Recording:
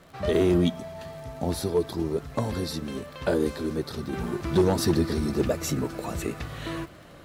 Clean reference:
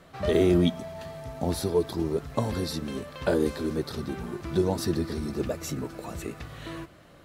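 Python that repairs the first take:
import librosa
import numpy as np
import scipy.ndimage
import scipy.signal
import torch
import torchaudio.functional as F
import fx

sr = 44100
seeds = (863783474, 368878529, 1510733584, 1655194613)

y = fx.fix_declip(x, sr, threshold_db=-14.5)
y = fx.fix_declick_ar(y, sr, threshold=6.5)
y = fx.fix_level(y, sr, at_s=4.13, step_db=-5.0)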